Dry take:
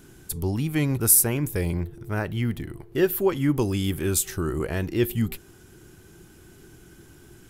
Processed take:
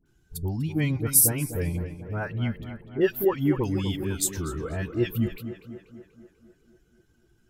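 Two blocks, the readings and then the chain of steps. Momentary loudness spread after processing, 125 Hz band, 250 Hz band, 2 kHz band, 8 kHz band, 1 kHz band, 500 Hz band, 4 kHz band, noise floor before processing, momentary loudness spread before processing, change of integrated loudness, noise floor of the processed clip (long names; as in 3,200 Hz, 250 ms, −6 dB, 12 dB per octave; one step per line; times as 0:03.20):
18 LU, −1.5 dB, −2.0 dB, −2.5 dB, −1.5 dB, −2.0 dB, −1.5 dB, −2.5 dB, −51 dBFS, 14 LU, −1.5 dB, −66 dBFS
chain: spectral dynamics exaggerated over time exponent 1.5
all-pass dispersion highs, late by 60 ms, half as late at 1,200 Hz
tape delay 246 ms, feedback 65%, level −9 dB, low-pass 2,600 Hz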